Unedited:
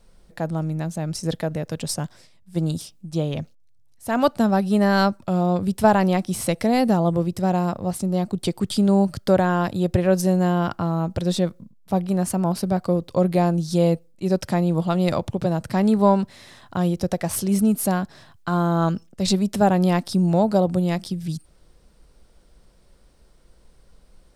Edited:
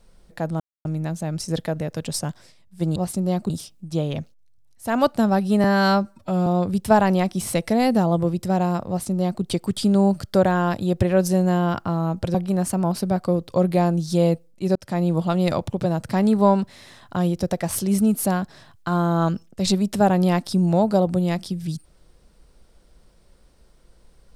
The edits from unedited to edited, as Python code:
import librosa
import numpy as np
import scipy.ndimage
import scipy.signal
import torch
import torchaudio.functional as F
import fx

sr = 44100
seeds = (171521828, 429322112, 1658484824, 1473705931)

y = fx.edit(x, sr, fx.insert_silence(at_s=0.6, length_s=0.25),
    fx.stretch_span(start_s=4.85, length_s=0.55, factor=1.5),
    fx.duplicate(start_s=7.82, length_s=0.54, to_s=2.71),
    fx.cut(start_s=11.28, length_s=0.67),
    fx.fade_in_span(start_s=14.36, length_s=0.28), tone=tone)